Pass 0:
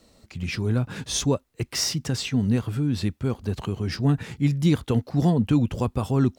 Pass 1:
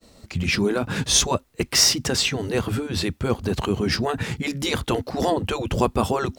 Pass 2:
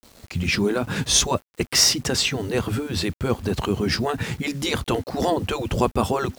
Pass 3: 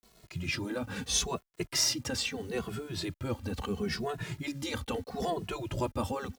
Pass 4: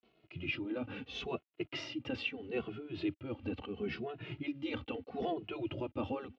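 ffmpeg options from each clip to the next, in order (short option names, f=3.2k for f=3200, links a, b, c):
-af "afftfilt=real='re*lt(hypot(re,im),0.398)':imag='im*lt(hypot(re,im),0.398)':win_size=1024:overlap=0.75,agate=range=-33dB:threshold=-53dB:ratio=3:detection=peak,volume=9dB"
-af "acrusher=bits=7:mix=0:aa=0.000001"
-filter_complex "[0:a]asplit=2[a][b];[b]adelay=2.3,afreqshift=-0.76[c];[a][c]amix=inputs=2:normalize=1,volume=-8dB"
-af "tremolo=f=2.3:d=0.48,highpass=110,equalizer=f=180:t=q:w=4:g=-8,equalizer=f=310:t=q:w=4:g=8,equalizer=f=1k:t=q:w=4:g=-7,equalizer=f=1.7k:t=q:w=4:g=-8,equalizer=f=2.8k:t=q:w=4:g=7,lowpass=f=3k:w=0.5412,lowpass=f=3k:w=1.3066,volume=-2.5dB"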